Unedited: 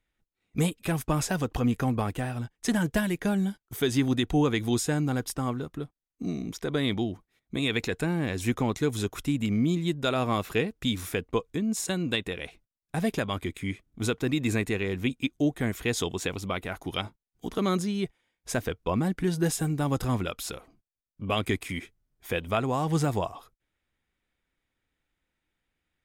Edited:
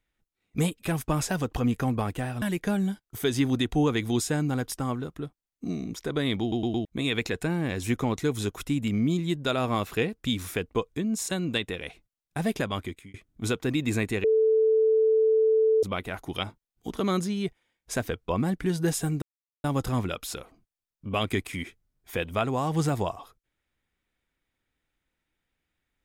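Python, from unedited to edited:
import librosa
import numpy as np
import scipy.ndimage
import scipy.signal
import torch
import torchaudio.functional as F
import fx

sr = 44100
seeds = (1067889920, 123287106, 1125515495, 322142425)

y = fx.edit(x, sr, fx.cut(start_s=2.42, length_s=0.58),
    fx.stutter_over(start_s=6.99, slice_s=0.11, count=4),
    fx.fade_out_span(start_s=13.36, length_s=0.36),
    fx.bleep(start_s=14.82, length_s=1.59, hz=440.0, db=-18.0),
    fx.insert_silence(at_s=19.8, length_s=0.42), tone=tone)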